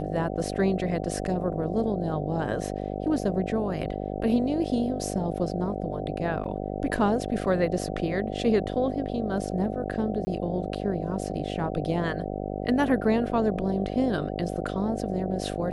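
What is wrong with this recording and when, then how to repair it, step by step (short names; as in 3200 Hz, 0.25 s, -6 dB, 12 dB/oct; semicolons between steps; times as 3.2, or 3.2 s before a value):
buzz 50 Hz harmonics 15 -32 dBFS
6.44 gap 4.4 ms
10.25–10.27 gap 20 ms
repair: de-hum 50 Hz, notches 15; interpolate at 6.44, 4.4 ms; interpolate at 10.25, 20 ms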